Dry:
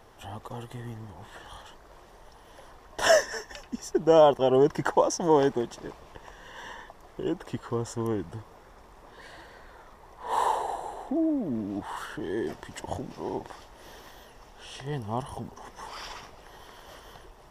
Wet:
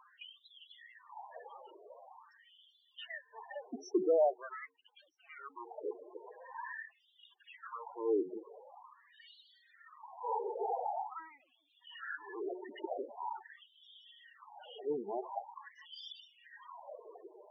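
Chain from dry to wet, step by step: de-hum 91.98 Hz, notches 5; low-pass that closes with the level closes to 350 Hz, closed at -22.5 dBFS; hard clipper -29 dBFS, distortion -8 dB; LFO high-pass sine 0.45 Hz 360–3500 Hz; loudest bins only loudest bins 8; trim -2 dB

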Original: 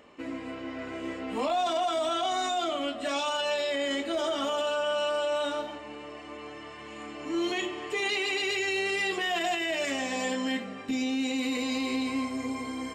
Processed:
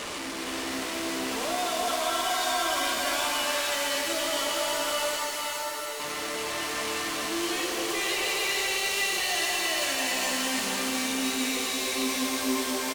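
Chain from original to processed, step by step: one-bit delta coder 64 kbps, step -29 dBFS; low-pass 10 kHz; tilt EQ +2 dB/octave; saturation -29 dBFS, distortion -11 dB; 5.16–6.00 s: ladder high-pass 330 Hz, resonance 55%; delay 464 ms -4.5 dB; pitch-shifted reverb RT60 3.4 s, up +7 st, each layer -2 dB, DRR 2 dB

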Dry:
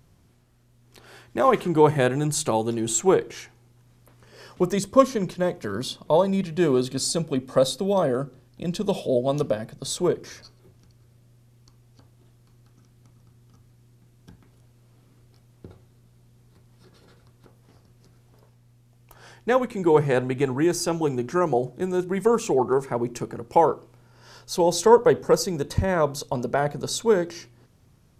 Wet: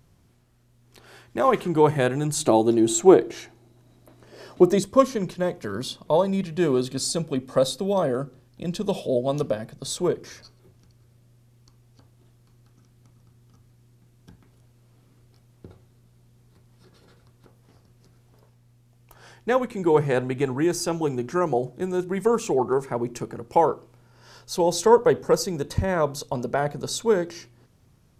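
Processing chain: 2.40–4.83 s: small resonant body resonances 320/640/3900 Hz, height 11 dB, ringing for 25 ms; trim -1 dB

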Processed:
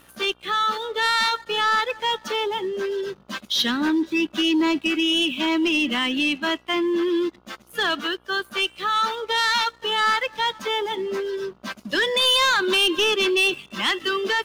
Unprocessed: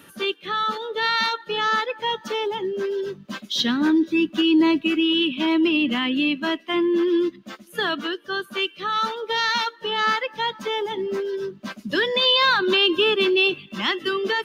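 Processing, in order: bass shelf 380 Hz -9 dB; waveshaping leveller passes 2; mains buzz 60 Hz, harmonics 24, -55 dBFS -2 dB/octave; trim -4 dB

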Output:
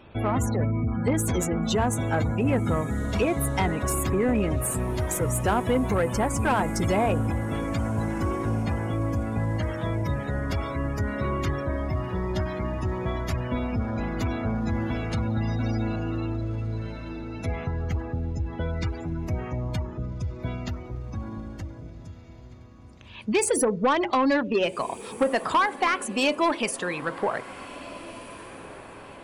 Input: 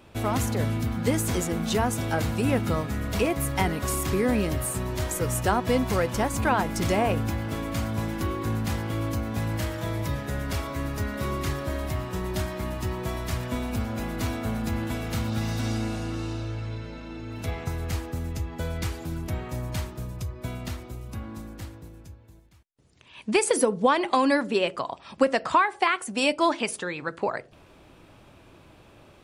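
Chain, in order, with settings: spectral gate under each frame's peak -25 dB strong; saturation -18 dBFS, distortion -15 dB; echo that smears into a reverb 1648 ms, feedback 41%, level -16 dB; trim +2.5 dB

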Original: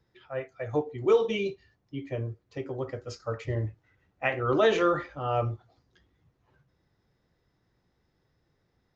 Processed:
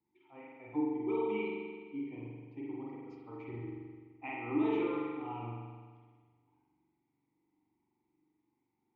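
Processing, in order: vowel filter u; distance through air 75 m; spring tank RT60 1.6 s, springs 42 ms, chirp 30 ms, DRR -5 dB

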